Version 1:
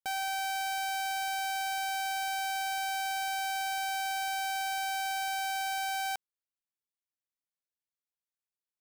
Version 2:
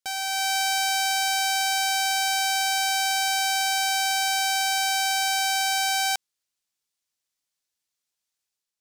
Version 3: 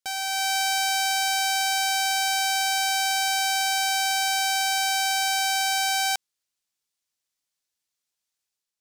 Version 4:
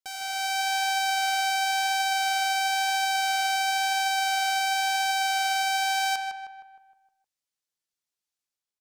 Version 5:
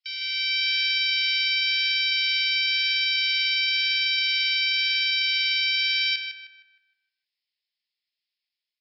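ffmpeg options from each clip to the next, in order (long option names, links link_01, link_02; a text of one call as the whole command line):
ffmpeg -i in.wav -af "equalizer=frequency=5700:width_type=o:width=2.2:gain=9.5,dynaudnorm=framelen=140:gausssize=5:maxgain=6dB" out.wav
ffmpeg -i in.wav -af anull out.wav
ffmpeg -i in.wav -filter_complex "[0:a]flanger=delay=2.3:depth=8.5:regen=77:speed=0.97:shape=sinusoidal,asplit=2[link_01][link_02];[link_02]adelay=155,lowpass=frequency=2100:poles=1,volume=-3dB,asplit=2[link_03][link_04];[link_04]adelay=155,lowpass=frequency=2100:poles=1,volume=0.53,asplit=2[link_05][link_06];[link_06]adelay=155,lowpass=frequency=2100:poles=1,volume=0.53,asplit=2[link_07][link_08];[link_08]adelay=155,lowpass=frequency=2100:poles=1,volume=0.53,asplit=2[link_09][link_10];[link_10]adelay=155,lowpass=frequency=2100:poles=1,volume=0.53,asplit=2[link_11][link_12];[link_12]adelay=155,lowpass=frequency=2100:poles=1,volume=0.53,asplit=2[link_13][link_14];[link_14]adelay=155,lowpass=frequency=2100:poles=1,volume=0.53[link_15];[link_03][link_05][link_07][link_09][link_11][link_13][link_15]amix=inputs=7:normalize=0[link_16];[link_01][link_16]amix=inputs=2:normalize=0,volume=-2dB" out.wav
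ffmpeg -i in.wav -af "asuperpass=centerf=4000:order=12:qfactor=0.65,volume=8.5dB" -ar 12000 -c:a libmp3lame -b:a 40k out.mp3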